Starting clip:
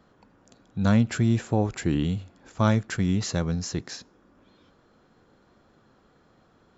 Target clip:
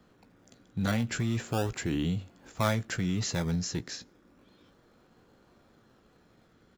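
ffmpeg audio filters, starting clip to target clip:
ffmpeg -i in.wav -filter_complex "[0:a]asplit=2[link_01][link_02];[link_02]adelay=17,volume=-12dB[link_03];[link_01][link_03]amix=inputs=2:normalize=0,acrossover=split=520|1000[link_04][link_05][link_06];[link_04]alimiter=limit=-21dB:level=0:latency=1[link_07];[link_05]acrusher=samples=23:mix=1:aa=0.000001:lfo=1:lforange=23:lforate=0.33[link_08];[link_07][link_08][link_06]amix=inputs=3:normalize=0,volume=-1.5dB" out.wav

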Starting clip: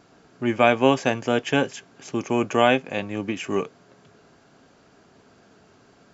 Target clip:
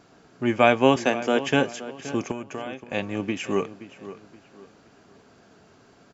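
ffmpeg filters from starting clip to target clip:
ffmpeg -i in.wav -filter_complex "[0:a]asettb=1/sr,asplit=3[link_01][link_02][link_03];[link_01]atrim=end=0.964[link_04];[link_02]atrim=start=0.96:end=1.43,asetpts=PTS-STARTPTS,afade=type=in:duration=0.004:curve=qsin,afade=type=out:start_time=0.466:duration=0.004:curve=qsin,highpass=frequency=190:width=0.5412,highpass=frequency=190:width=1.3066[link_05];[link_03]atrim=start=1.426[link_06];[link_04][link_05]acrossfade=duration=0.004:curve1=hsin:curve2=qsin[link_07];[link_07][link_06]acrossfade=duration=0.004:curve1=qsin:curve2=hsin,asettb=1/sr,asplit=3[link_08][link_09][link_10];[link_08]atrim=end=2.314[link_11];[link_09]atrim=start=2.31:end=2.92,asetpts=PTS-STARTPTS,afade=type=in:duration=0.004:curve=qsin,afade=type=out:start_time=0.606:duration=0.004:curve=qsin,acompressor=threshold=-31dB:ratio=8[link_12];[link_10]atrim=start=2.916[link_13];[link_11][link_12]acrossfade=duration=0.004:curve1=hsin:curve2=qsin[link_14];[link_14][link_13]acrossfade=duration=0.004:curve1=qsin:curve2=hsin,asplit=2[link_15][link_16];[link_16]adelay=523,lowpass=frequency=3300:poles=1,volume=-14.5dB,asplit=2[link_17][link_18];[link_18]adelay=523,lowpass=frequency=3300:poles=1,volume=0.33,asplit=2[link_19][link_20];[link_20]adelay=523,lowpass=frequency=3300:poles=1,volume=0.33[link_21];[link_15][link_17][link_19][link_21]amix=inputs=4:normalize=0" out.wav

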